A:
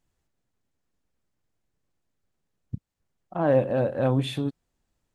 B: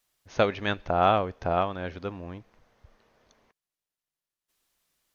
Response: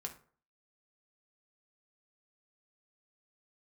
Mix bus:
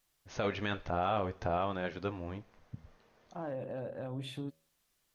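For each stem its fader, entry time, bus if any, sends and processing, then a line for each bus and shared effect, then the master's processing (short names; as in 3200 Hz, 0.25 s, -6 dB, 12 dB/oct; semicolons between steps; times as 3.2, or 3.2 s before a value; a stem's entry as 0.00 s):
-11.5 dB, 0.00 s, no send, de-hum 79.77 Hz, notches 8; limiter -19.5 dBFS, peak gain reduction 10 dB
+1.5 dB, 0.00 s, send -13.5 dB, flange 0.54 Hz, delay 5.3 ms, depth 7.1 ms, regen -60%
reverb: on, RT60 0.45 s, pre-delay 3 ms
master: limiter -22 dBFS, peak gain reduction 12.5 dB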